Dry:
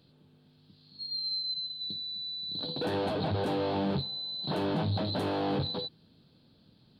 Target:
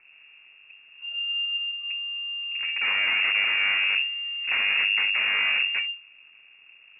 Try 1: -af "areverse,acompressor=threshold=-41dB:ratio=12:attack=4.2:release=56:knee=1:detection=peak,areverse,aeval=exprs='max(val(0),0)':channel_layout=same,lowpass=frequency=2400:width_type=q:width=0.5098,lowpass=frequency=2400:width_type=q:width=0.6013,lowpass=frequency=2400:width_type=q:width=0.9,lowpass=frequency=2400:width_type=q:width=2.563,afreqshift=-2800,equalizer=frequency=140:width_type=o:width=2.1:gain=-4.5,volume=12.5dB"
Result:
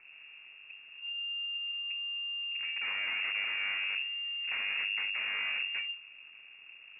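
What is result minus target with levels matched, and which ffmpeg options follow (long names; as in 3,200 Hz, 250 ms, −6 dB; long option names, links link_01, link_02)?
downward compressor: peak gain reduction +10.5 dB
-af "areverse,acompressor=threshold=-29.5dB:ratio=12:attack=4.2:release=56:knee=1:detection=peak,areverse,aeval=exprs='max(val(0),0)':channel_layout=same,lowpass=frequency=2400:width_type=q:width=0.5098,lowpass=frequency=2400:width_type=q:width=0.6013,lowpass=frequency=2400:width_type=q:width=0.9,lowpass=frequency=2400:width_type=q:width=2.563,afreqshift=-2800,equalizer=frequency=140:width_type=o:width=2.1:gain=-4.5,volume=12.5dB"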